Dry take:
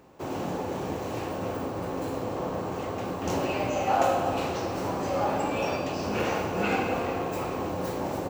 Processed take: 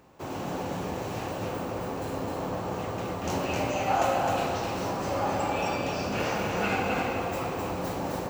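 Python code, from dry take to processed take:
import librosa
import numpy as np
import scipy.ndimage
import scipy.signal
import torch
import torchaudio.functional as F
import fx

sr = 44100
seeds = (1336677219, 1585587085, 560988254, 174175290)

p1 = fx.peak_eq(x, sr, hz=380.0, db=-4.0, octaves=1.7)
y = p1 + fx.echo_single(p1, sr, ms=260, db=-3.5, dry=0)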